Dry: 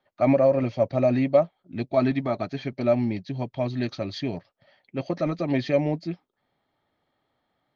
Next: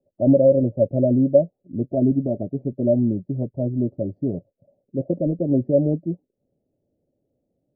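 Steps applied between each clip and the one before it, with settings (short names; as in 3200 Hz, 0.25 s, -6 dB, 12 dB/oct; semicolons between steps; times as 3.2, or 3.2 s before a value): elliptic low-pass 560 Hz, stop band 60 dB; gain +5.5 dB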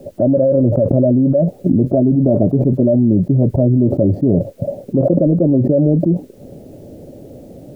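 fast leveller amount 100%; gain -2.5 dB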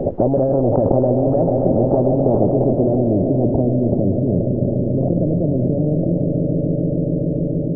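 swelling echo 0.144 s, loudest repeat 5, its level -14 dB; low-pass sweep 530 Hz -> 180 Hz, 2.1–4.41; spectral compressor 4:1; gain -3.5 dB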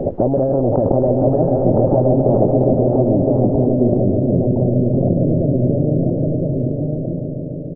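ending faded out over 1.86 s; echo 1.016 s -4 dB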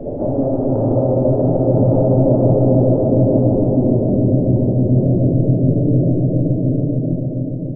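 reverb RT60 2.9 s, pre-delay 3 ms, DRR -6.5 dB; gain -9.5 dB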